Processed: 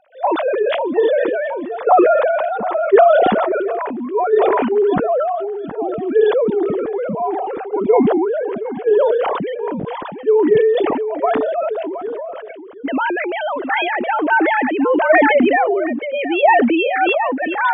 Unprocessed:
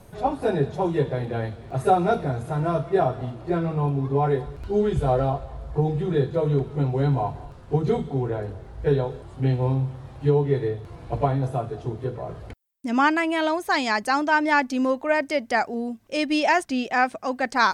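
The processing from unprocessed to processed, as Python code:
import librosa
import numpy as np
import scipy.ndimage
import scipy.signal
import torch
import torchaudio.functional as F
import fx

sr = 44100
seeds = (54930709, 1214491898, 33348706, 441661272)

p1 = fx.sine_speech(x, sr)
p2 = p1 + fx.echo_single(p1, sr, ms=718, db=-12.5, dry=0)
p3 = fx.sustainer(p2, sr, db_per_s=21.0)
y = p3 * librosa.db_to_amplitude(3.0)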